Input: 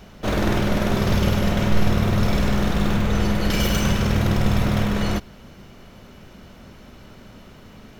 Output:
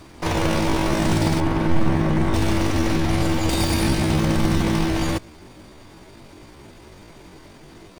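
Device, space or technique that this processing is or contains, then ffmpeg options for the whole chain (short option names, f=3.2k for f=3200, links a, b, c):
chipmunk voice: -filter_complex "[0:a]asetrate=70004,aresample=44100,atempo=0.629961,asettb=1/sr,asplit=3[a][b][c];[a]atrim=end=1.404[d];[b]atrim=start=1.4:end=2.34,asetpts=PTS-STARTPTS,afade=t=in:d=0.004:c=qsin,afade=t=out:st=0.936:d=0.004:c=qsin,acrossover=split=2500[e][f];[f]acompressor=threshold=-45dB:ratio=4:attack=1:release=60[g];[e][g]amix=inputs=2:normalize=0[h];[c]atrim=start=2.336[i];[d][h]acrossfade=d=0.004:c1=hsin:c2=qsin[j];[j][i]acrossfade=d=0.004:c1=qsin:c2=hsin"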